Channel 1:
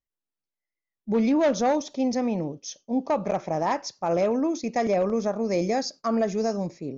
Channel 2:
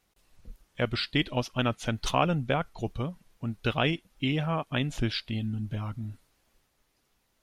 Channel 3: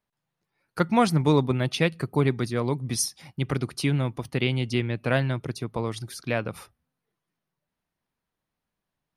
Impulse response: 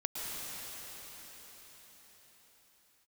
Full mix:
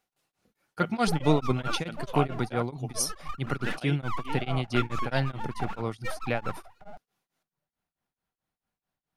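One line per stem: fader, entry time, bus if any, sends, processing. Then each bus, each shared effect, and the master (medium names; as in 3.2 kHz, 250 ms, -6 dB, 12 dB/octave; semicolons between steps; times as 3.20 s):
-3.0 dB, 0.00 s, no send, formants replaced by sine waves; full-wave rectifier; peak limiter -18.5 dBFS, peak gain reduction 11 dB
-6.5 dB, 0.00 s, no send, high-pass 230 Hz 12 dB/octave
-1.5 dB, 0.00 s, no send, none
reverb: none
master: small resonant body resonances 760/1400 Hz, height 7 dB; tremolo of two beating tones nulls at 4.6 Hz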